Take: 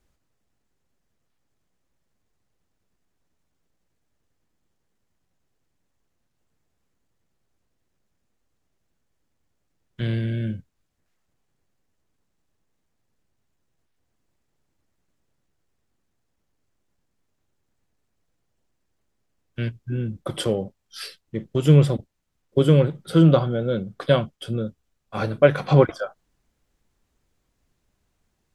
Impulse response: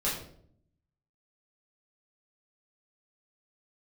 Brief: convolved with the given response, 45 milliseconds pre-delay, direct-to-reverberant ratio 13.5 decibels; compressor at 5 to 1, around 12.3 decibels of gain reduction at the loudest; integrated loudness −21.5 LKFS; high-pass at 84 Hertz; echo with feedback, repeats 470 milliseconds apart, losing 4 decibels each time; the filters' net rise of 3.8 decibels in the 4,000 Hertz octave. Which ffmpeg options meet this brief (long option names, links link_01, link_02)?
-filter_complex "[0:a]highpass=84,equalizer=frequency=4000:width_type=o:gain=5,acompressor=threshold=-24dB:ratio=5,aecho=1:1:470|940|1410|1880|2350|2820|3290|3760|4230:0.631|0.398|0.25|0.158|0.0994|0.0626|0.0394|0.0249|0.0157,asplit=2[link_01][link_02];[1:a]atrim=start_sample=2205,adelay=45[link_03];[link_02][link_03]afir=irnorm=-1:irlink=0,volume=-21dB[link_04];[link_01][link_04]amix=inputs=2:normalize=0,volume=8.5dB"